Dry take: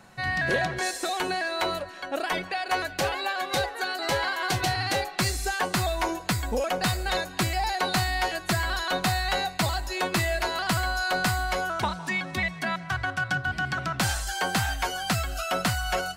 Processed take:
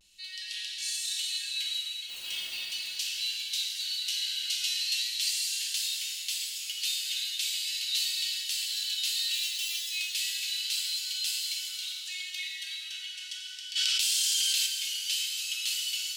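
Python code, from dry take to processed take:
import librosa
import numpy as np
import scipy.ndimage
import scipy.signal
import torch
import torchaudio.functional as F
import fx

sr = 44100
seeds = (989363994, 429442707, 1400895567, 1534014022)

y = fx.sample_sort(x, sr, block=128, at=(9.33, 9.82), fade=0.02)
y = scipy.signal.sosfilt(scipy.signal.ellip(4, 1.0, 80, 2900.0, 'highpass', fs=sr, output='sos'), y)
y = fx.high_shelf(y, sr, hz=7300.0, db=-5.0)
y = fx.vibrato(y, sr, rate_hz=0.38, depth_cents=31.0)
y = fx.dmg_noise_colour(y, sr, seeds[0], colour='white', level_db=-54.0, at=(2.08, 2.59), fade=0.02)
y = fx.rev_plate(y, sr, seeds[1], rt60_s=3.0, hf_ratio=0.85, predelay_ms=0, drr_db=-4.5)
y = fx.env_flatten(y, sr, amount_pct=100, at=(13.75, 14.65), fade=0.02)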